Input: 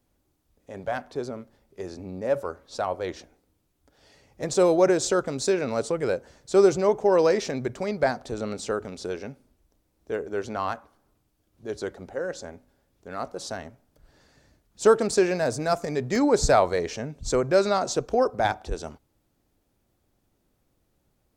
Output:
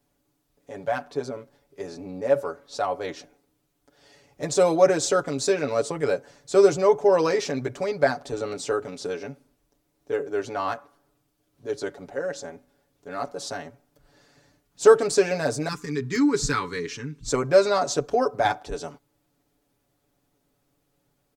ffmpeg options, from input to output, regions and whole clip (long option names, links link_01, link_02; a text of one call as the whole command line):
ffmpeg -i in.wav -filter_complex "[0:a]asettb=1/sr,asplit=3[link_01][link_02][link_03];[link_01]atrim=end=15.684[link_04];[link_02]atrim=start=15.68:end=17.28,asetpts=PTS-STARTPTS,afade=type=in:duration=0.004:curve=qsin,afade=type=out:start_time=1.596:duration=0.004:curve=qsin,asuperstop=centerf=650:order=4:qfactor=0.86,highshelf=frequency=5700:gain=-4[link_05];[link_03]atrim=start=17.276[link_06];[link_04][link_05]acrossfade=duration=0.004:curve1=hsin:curve2=qsin[link_07];[link_07][link_06]acrossfade=duration=0.004:curve1=qsin:curve2=hsin,lowshelf=frequency=110:gain=-8.5,aecho=1:1:7:0.77" out.wav